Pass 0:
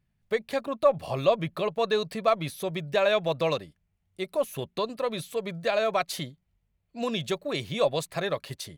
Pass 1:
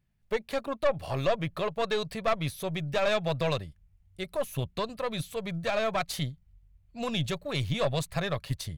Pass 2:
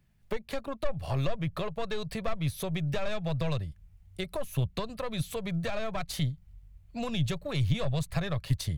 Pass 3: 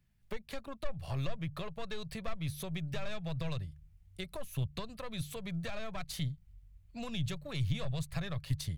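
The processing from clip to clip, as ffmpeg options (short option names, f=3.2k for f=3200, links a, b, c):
-af "asubboost=boost=10.5:cutoff=94,aeval=exprs='(tanh(11.2*val(0)+0.55)-tanh(0.55))/11.2':c=same,volume=1.5dB"
-filter_complex "[0:a]acrossover=split=140[a][b];[b]acompressor=threshold=-40dB:ratio=6[c];[a][c]amix=inputs=2:normalize=0,volume=7dB"
-af "equalizer=f=540:t=o:w=2.4:g=-5,bandreject=f=73.41:t=h:w=4,bandreject=f=146.82:t=h:w=4,volume=-4.5dB"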